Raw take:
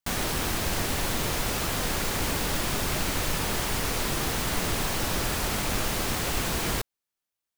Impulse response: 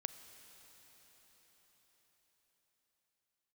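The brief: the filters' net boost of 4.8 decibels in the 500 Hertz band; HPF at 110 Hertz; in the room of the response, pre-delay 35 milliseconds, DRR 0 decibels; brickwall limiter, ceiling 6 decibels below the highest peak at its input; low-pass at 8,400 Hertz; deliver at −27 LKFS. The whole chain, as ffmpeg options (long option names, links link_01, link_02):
-filter_complex "[0:a]highpass=110,lowpass=8400,equalizer=frequency=500:width_type=o:gain=6,alimiter=limit=-21.5dB:level=0:latency=1,asplit=2[link_01][link_02];[1:a]atrim=start_sample=2205,adelay=35[link_03];[link_02][link_03]afir=irnorm=-1:irlink=0,volume=2dB[link_04];[link_01][link_04]amix=inputs=2:normalize=0,volume=0.5dB"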